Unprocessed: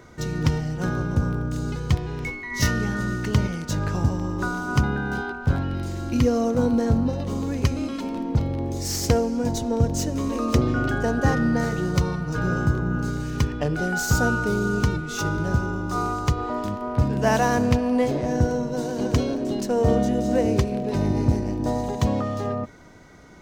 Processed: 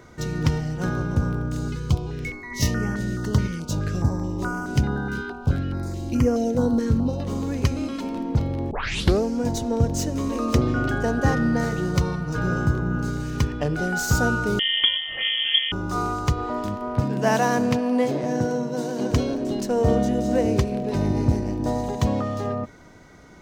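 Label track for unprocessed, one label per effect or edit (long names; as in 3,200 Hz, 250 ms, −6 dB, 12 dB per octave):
1.680000	7.200000	notch on a step sequencer 4.7 Hz 720–3,800 Hz
8.710000	8.710000	tape start 0.52 s
14.590000	15.720000	voice inversion scrambler carrier 3,300 Hz
17.000000	19.110000	high-pass filter 130 Hz 24 dB per octave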